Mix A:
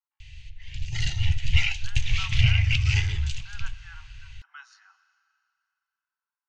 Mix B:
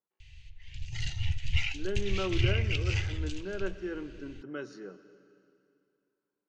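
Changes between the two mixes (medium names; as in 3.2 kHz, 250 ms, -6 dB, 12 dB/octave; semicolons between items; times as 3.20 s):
speech: remove steep high-pass 800 Hz 96 dB/octave; background -7.5 dB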